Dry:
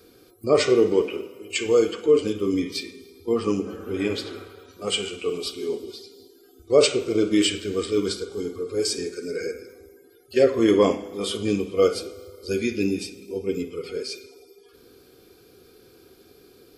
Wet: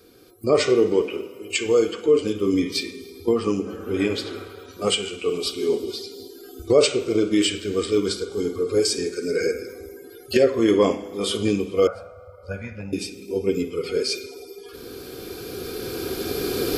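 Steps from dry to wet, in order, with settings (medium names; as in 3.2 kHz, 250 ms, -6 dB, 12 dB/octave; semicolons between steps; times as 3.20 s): recorder AGC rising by 7.9 dB/s; 11.87–12.93 s: FFT filter 150 Hz 0 dB, 370 Hz -29 dB, 570 Hz +6 dB, 1.6 kHz 0 dB, 3.6 kHz -24 dB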